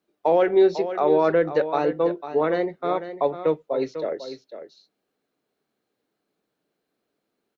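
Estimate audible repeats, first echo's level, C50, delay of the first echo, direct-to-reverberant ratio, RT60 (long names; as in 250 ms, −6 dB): 1, −11.0 dB, no reverb audible, 498 ms, no reverb audible, no reverb audible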